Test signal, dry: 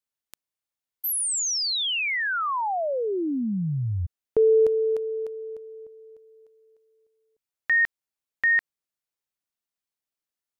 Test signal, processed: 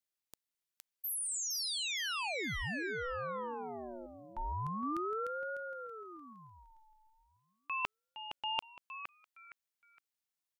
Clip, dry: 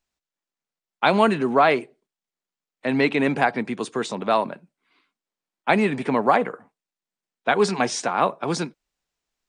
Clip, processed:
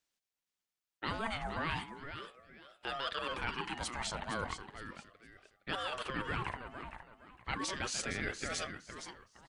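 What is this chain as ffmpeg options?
ffmpeg -i in.wav -af "highpass=frequency=1000:poles=1,areverse,acompressor=threshold=-37dB:ratio=5:attack=14:release=74:knee=1:detection=peak,areverse,aecho=1:1:464|928|1392:0.355|0.0993|0.0278,aeval=exprs='val(0)*sin(2*PI*710*n/s+710*0.4/0.36*sin(2*PI*0.36*n/s))':channel_layout=same,volume=1.5dB" out.wav

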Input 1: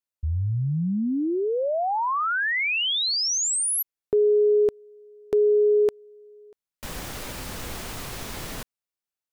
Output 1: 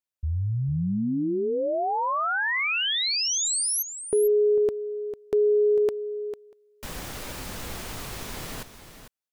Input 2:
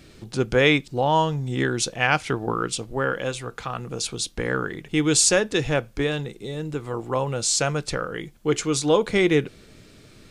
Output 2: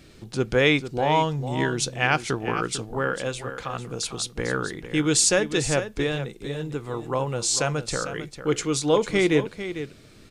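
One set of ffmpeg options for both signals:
ffmpeg -i in.wav -af "aecho=1:1:449:0.282,volume=-1.5dB" out.wav

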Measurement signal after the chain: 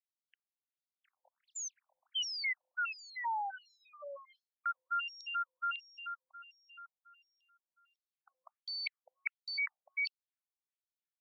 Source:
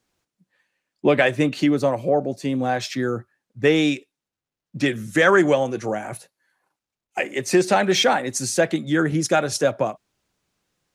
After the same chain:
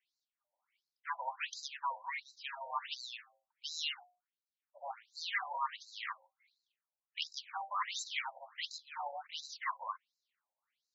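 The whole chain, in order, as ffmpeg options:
ffmpeg -i in.wav -filter_complex "[0:a]lowshelf=frequency=65:gain=11,bandreject=frequency=60:width_type=h:width=6,bandreject=frequency=120:width_type=h:width=6,bandreject=frequency=180:width_type=h:width=6,bandreject=frequency=240:width_type=h:width=6,bandreject=frequency=300:width_type=h:width=6,bandreject=frequency=360:width_type=h:width=6,acrossover=split=2900[link_01][link_02];[link_01]dynaudnorm=framelen=140:gausssize=17:maxgain=6dB[link_03];[link_03][link_02]amix=inputs=2:normalize=0,acrossover=split=580 3900:gain=0.0794 1 0.224[link_04][link_05][link_06];[link_04][link_05][link_06]amix=inputs=3:normalize=0,afreqshift=420,areverse,acompressor=threshold=-26dB:ratio=10,areverse,aeval=exprs='max(val(0),0)':channel_layout=same,afftfilt=real='re*between(b*sr/1024,670*pow(5500/670,0.5+0.5*sin(2*PI*1.4*pts/sr))/1.41,670*pow(5500/670,0.5+0.5*sin(2*PI*1.4*pts/sr))*1.41)':imag='im*between(b*sr/1024,670*pow(5500/670,0.5+0.5*sin(2*PI*1.4*pts/sr))/1.41,670*pow(5500/670,0.5+0.5*sin(2*PI*1.4*pts/sr))*1.41)':win_size=1024:overlap=0.75,volume=1dB" out.wav

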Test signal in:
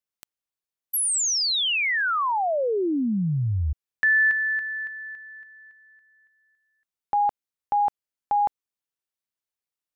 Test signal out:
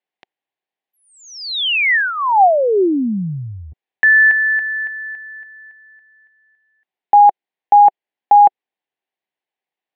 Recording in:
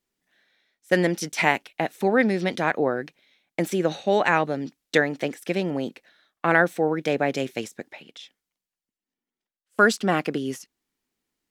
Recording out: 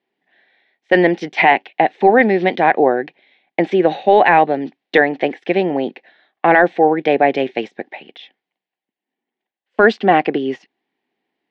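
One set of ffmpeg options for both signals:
ffmpeg -i in.wav -af "highpass=210,equalizer=frequency=380:width_type=q:width=4:gain=4,equalizer=frequency=770:width_type=q:width=4:gain=9,equalizer=frequency=1300:width_type=q:width=4:gain=-9,equalizer=frequency=1900:width_type=q:width=4:gain=4,lowpass=frequency=3400:width=0.5412,lowpass=frequency=3400:width=1.3066,apsyclip=9dB,volume=-1.5dB" out.wav

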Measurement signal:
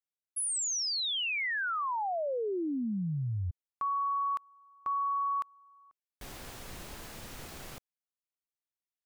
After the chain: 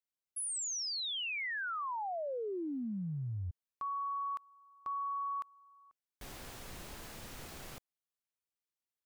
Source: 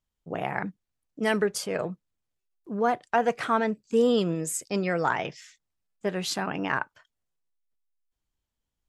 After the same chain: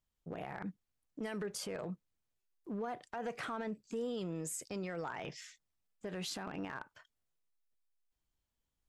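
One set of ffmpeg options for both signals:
ffmpeg -i in.wav -af "acompressor=threshold=-32dB:ratio=6:attack=0.13:release=80:knee=6:detection=peak,volume=-2.5dB" out.wav

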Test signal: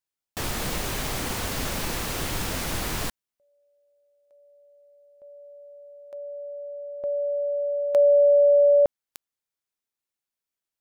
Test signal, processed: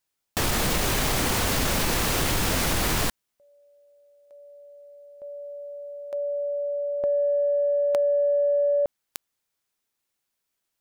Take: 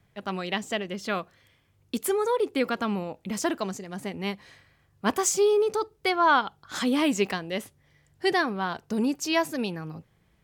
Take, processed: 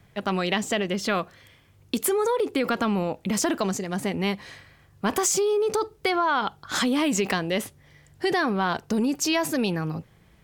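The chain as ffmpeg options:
ffmpeg -i in.wav -af "acompressor=threshold=-30dB:ratio=12:attack=8.7:release=42:knee=6:detection=peak,volume=8.5dB" out.wav

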